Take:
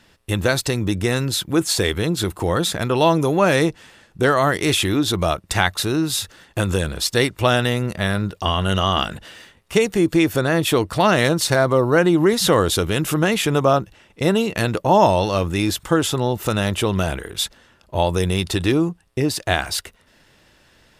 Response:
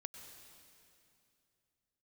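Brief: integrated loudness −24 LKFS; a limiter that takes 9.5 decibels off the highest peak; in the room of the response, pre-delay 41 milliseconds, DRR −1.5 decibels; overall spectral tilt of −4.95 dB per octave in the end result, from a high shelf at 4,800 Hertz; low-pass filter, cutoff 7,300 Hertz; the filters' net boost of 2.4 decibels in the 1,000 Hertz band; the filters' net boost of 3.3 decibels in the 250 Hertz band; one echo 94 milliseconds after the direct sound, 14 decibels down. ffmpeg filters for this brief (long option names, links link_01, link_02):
-filter_complex "[0:a]lowpass=7300,equalizer=frequency=250:width_type=o:gain=4.5,equalizer=frequency=1000:width_type=o:gain=3,highshelf=frequency=4800:gain=-4,alimiter=limit=-9dB:level=0:latency=1,aecho=1:1:94:0.2,asplit=2[link_01][link_02];[1:a]atrim=start_sample=2205,adelay=41[link_03];[link_02][link_03]afir=irnorm=-1:irlink=0,volume=5.5dB[link_04];[link_01][link_04]amix=inputs=2:normalize=0,volume=-7dB"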